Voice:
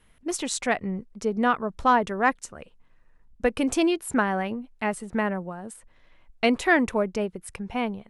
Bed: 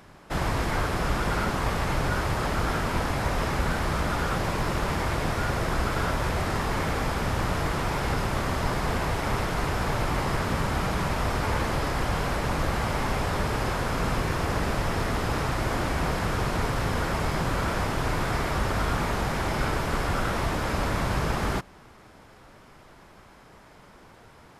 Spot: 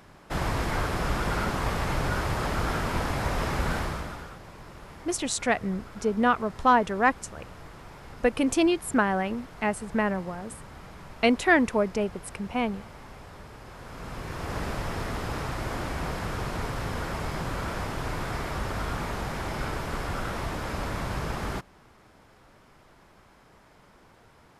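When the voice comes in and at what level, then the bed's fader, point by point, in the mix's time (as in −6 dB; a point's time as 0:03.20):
4.80 s, 0.0 dB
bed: 0:03.78 −1.5 dB
0:04.39 −18.5 dB
0:13.64 −18.5 dB
0:14.58 −5 dB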